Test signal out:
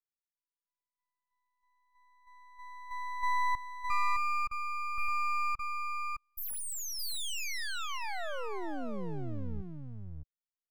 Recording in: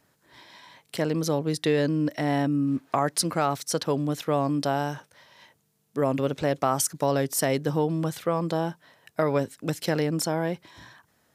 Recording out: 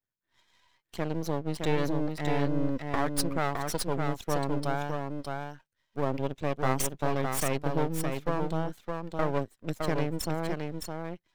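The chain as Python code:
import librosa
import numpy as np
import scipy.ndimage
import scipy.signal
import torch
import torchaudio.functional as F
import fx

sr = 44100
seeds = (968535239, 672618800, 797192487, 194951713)

y = fx.bin_expand(x, sr, power=1.5)
y = np.maximum(y, 0.0)
y = y + 10.0 ** (-4.5 / 20.0) * np.pad(y, (int(613 * sr / 1000.0), 0))[:len(y)]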